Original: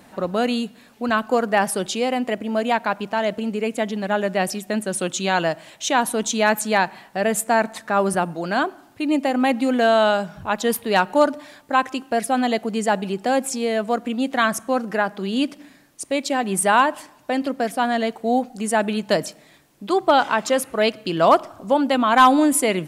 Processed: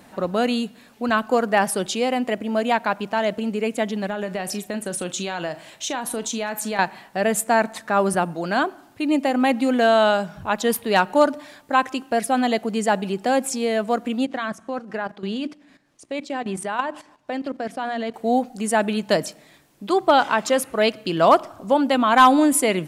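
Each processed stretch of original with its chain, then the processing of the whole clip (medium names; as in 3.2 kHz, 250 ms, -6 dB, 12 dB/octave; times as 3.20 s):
4.07–6.79 s: compression, threshold -23 dBFS + doubling 39 ms -13 dB
14.25–18.14 s: hum notches 60/120/180/240/300/360 Hz + level held to a coarse grid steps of 13 dB + distance through air 60 m
whole clip: none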